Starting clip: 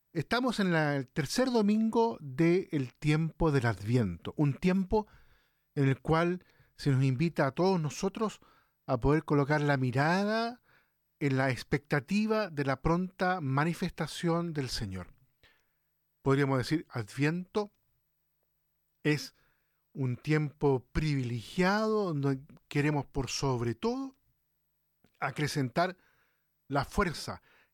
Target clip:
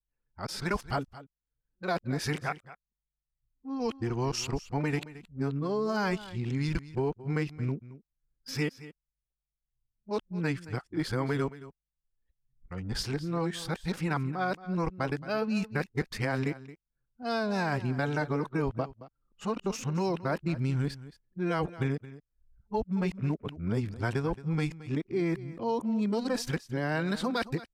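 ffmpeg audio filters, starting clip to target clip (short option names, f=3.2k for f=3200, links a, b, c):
-filter_complex "[0:a]areverse,anlmdn=0.0398,acompressor=threshold=-28dB:ratio=6,asplit=2[a][b];[b]aecho=0:1:222:0.15[c];[a][c]amix=inputs=2:normalize=0,volume=2dB" -ar 44100 -c:a aac -b:a 128k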